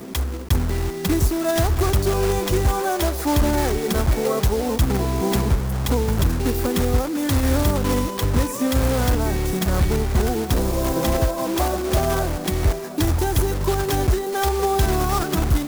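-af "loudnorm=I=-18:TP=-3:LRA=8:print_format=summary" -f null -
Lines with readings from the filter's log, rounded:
Input Integrated:    -21.4 LUFS
Input True Peak:      -8.1 dBTP
Input LRA:             0.6 LU
Input Threshold:     -31.4 LUFS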